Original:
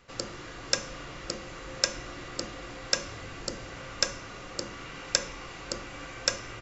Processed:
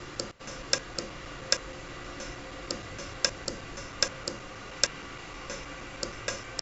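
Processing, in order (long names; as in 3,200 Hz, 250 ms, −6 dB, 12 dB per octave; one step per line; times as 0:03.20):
slices reordered back to front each 157 ms, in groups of 3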